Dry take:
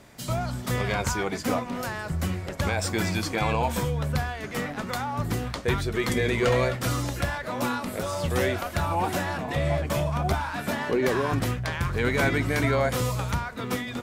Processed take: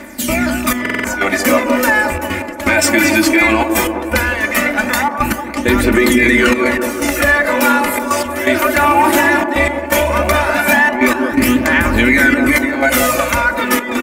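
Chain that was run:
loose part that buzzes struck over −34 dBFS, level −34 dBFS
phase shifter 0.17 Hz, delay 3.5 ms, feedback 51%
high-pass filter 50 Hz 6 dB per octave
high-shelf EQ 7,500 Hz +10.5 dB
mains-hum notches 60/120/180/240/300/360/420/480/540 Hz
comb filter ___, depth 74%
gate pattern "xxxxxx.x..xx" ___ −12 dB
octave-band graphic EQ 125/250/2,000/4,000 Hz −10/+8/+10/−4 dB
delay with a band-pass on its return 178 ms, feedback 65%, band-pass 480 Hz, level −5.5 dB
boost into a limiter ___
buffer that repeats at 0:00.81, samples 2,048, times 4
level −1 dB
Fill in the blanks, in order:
3.4 ms, 124 BPM, +10.5 dB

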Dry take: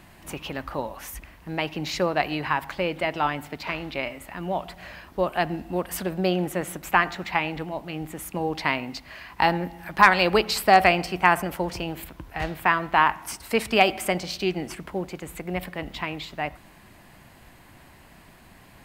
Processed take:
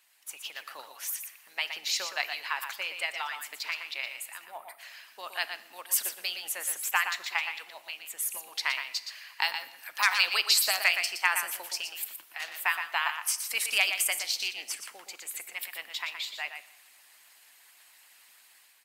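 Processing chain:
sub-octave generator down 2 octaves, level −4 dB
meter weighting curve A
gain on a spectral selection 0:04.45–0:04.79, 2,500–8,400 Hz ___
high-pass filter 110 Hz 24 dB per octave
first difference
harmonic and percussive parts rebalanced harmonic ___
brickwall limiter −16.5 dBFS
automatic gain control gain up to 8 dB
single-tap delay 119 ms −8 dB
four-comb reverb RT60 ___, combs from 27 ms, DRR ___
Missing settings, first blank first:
−17 dB, −15 dB, 0.98 s, 15.5 dB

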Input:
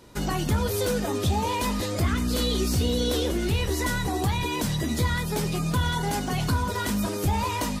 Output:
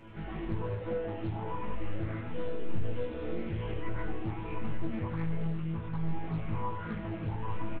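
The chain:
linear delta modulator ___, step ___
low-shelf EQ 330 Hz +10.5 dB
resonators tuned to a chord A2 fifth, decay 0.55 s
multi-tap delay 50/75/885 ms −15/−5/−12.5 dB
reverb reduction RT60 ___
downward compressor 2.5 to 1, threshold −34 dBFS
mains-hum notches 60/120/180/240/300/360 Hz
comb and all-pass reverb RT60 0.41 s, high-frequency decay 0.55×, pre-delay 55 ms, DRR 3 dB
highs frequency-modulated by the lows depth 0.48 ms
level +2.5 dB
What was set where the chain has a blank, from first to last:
16 kbit/s, −35.5 dBFS, 0.54 s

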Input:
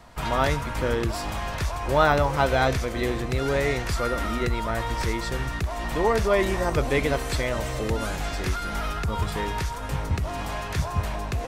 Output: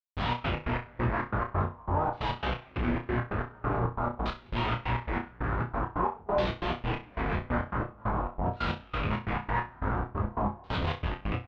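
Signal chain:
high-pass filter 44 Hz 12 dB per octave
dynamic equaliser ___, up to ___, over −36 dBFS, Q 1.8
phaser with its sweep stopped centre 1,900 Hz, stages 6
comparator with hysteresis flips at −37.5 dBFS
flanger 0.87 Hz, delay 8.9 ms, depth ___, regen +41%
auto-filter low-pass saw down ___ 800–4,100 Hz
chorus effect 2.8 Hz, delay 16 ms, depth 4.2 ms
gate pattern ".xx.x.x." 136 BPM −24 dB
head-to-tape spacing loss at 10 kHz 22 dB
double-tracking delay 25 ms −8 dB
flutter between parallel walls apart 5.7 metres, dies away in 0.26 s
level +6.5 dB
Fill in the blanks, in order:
540 Hz, +3 dB, 3.2 ms, 0.47 Hz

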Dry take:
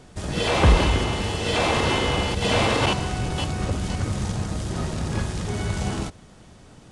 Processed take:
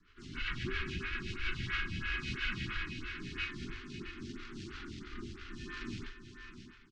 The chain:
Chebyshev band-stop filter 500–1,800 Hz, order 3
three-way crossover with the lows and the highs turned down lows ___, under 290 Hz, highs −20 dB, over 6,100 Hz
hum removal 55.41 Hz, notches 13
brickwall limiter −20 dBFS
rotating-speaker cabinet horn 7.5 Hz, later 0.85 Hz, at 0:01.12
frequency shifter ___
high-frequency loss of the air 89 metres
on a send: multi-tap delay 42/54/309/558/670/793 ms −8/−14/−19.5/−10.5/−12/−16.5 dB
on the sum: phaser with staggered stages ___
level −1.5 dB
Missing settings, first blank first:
−22 dB, −440 Hz, 3 Hz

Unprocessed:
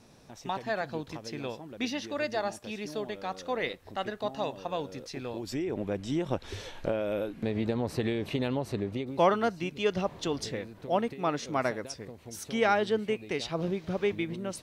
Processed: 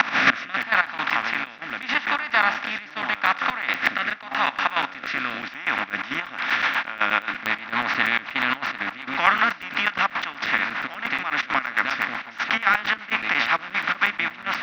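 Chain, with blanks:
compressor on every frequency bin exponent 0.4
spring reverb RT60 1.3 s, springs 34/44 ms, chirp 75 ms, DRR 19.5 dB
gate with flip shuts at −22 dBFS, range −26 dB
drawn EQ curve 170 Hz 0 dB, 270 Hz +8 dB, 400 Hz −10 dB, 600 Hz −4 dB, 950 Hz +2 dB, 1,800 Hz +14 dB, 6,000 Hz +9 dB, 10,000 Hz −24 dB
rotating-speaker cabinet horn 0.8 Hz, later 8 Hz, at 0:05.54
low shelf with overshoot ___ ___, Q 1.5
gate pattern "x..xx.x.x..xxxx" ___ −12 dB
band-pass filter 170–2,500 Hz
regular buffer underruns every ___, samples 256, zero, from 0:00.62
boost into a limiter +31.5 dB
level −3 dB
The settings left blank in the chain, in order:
630 Hz, −10 dB, 167 BPM, 0.12 s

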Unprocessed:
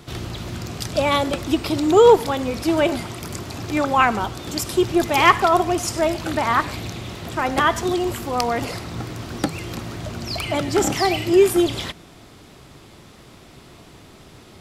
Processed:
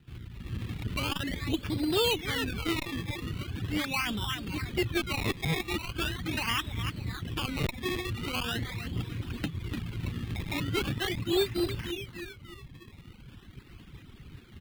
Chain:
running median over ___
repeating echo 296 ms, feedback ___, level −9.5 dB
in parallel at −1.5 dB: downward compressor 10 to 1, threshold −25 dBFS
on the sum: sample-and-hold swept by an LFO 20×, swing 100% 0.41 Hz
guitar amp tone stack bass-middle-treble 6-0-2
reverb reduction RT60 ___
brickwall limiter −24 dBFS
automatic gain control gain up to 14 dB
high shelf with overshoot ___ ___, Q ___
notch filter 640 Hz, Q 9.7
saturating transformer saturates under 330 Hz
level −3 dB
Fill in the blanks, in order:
9 samples, 43%, 1.3 s, 4,400 Hz, −8.5 dB, 1.5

